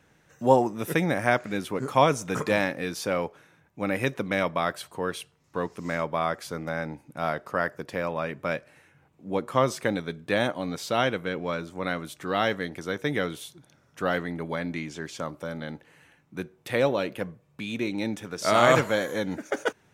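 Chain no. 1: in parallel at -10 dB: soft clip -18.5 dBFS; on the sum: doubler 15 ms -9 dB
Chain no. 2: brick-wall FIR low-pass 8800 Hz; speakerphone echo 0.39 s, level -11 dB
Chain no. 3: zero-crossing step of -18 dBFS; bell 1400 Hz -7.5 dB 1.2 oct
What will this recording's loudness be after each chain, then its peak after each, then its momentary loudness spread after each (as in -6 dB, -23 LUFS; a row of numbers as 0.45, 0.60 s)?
-25.5, -27.5, -22.0 LUFS; -2.0, -3.0, -5.0 dBFS; 13, 14, 4 LU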